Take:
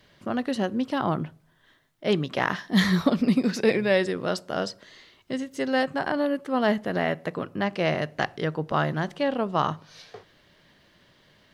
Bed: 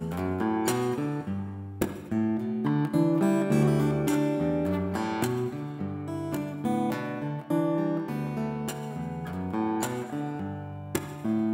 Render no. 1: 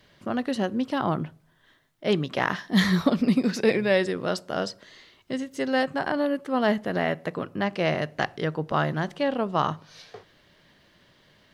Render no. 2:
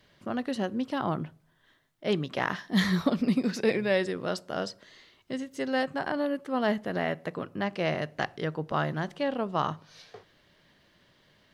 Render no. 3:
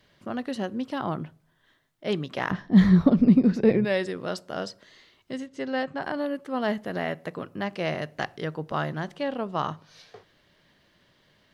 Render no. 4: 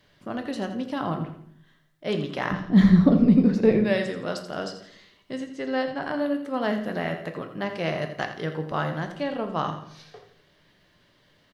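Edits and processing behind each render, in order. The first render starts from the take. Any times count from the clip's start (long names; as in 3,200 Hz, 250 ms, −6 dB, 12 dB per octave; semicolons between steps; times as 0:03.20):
no processing that can be heard
level −4 dB
0:02.51–0:03.85: spectral tilt −4 dB per octave; 0:05.46–0:06.02: high-frequency loss of the air 85 metres; 0:06.77–0:08.89: high-shelf EQ 8,300 Hz +5 dB
on a send: repeating echo 84 ms, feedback 38%, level −11 dB; on the sum: rectangular room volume 85 cubic metres, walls mixed, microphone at 0.36 metres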